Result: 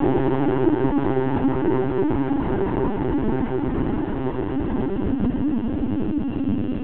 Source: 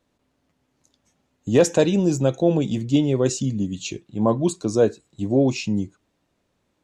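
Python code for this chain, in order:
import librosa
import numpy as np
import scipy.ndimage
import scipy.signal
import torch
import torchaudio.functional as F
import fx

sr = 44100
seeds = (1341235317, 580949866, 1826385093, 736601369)

y = fx.lower_of_two(x, sr, delay_ms=0.69)
y = scipy.signal.sosfilt(scipy.signal.cheby1(2, 1.0, [210.0, 1900.0], 'bandpass', fs=sr, output='sos'), y)
y = fx.paulstretch(y, sr, seeds[0], factor=18.0, window_s=1.0, from_s=3.25)
y = fx.room_shoebox(y, sr, seeds[1], volume_m3=41.0, walls='mixed', distance_m=0.45)
y = fx.lpc_vocoder(y, sr, seeds[2], excitation='pitch_kept', order=16)
y = F.gain(torch.from_numpy(y), 1.5).numpy()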